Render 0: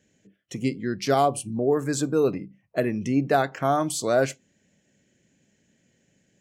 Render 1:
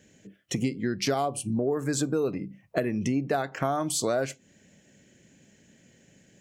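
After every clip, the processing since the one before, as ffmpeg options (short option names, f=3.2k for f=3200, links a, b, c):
-af "acompressor=threshold=-32dB:ratio=6,volume=7.5dB"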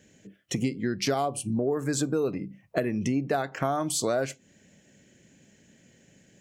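-af anull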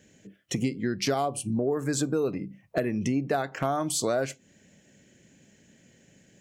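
-af "asoftclip=type=hard:threshold=-15dB"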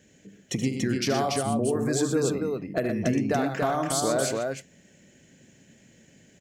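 -af "aecho=1:1:75.8|119.5|285.7:0.316|0.398|0.708"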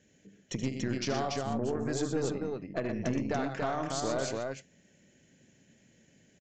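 -af "aeval=exprs='0.266*(cos(1*acos(clip(val(0)/0.266,-1,1)))-cos(1*PI/2))+0.0188*(cos(6*acos(clip(val(0)/0.266,-1,1)))-cos(6*PI/2))':c=same,aresample=16000,aresample=44100,volume=-7dB"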